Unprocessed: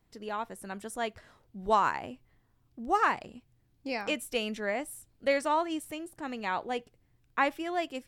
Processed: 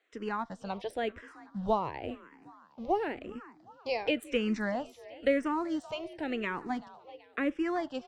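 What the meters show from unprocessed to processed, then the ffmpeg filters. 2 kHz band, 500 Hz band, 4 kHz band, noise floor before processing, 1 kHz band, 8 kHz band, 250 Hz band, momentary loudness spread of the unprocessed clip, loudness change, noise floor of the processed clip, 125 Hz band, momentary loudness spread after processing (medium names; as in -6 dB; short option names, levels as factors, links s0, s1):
-3.5 dB, +0.5 dB, -2.5 dB, -70 dBFS, -5.5 dB, -11.5 dB, +4.0 dB, 14 LU, -2.0 dB, -60 dBFS, +4.5 dB, 15 LU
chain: -filter_complex "[0:a]acrossover=split=470|6000[s0][s1][s2];[s0]aeval=exprs='sgn(val(0))*max(abs(val(0))-0.00112,0)':c=same[s3];[s1]acompressor=threshold=0.0126:ratio=6[s4];[s2]acrusher=bits=4:mix=0:aa=0.5[s5];[s3][s4][s5]amix=inputs=3:normalize=0,asplit=5[s6][s7][s8][s9][s10];[s7]adelay=382,afreqshift=40,volume=0.112[s11];[s8]adelay=764,afreqshift=80,volume=0.055[s12];[s9]adelay=1146,afreqshift=120,volume=0.0269[s13];[s10]adelay=1528,afreqshift=160,volume=0.0132[s14];[s6][s11][s12][s13][s14]amix=inputs=5:normalize=0,asplit=2[s15][s16];[s16]afreqshift=-0.95[s17];[s15][s17]amix=inputs=2:normalize=1,volume=2.51"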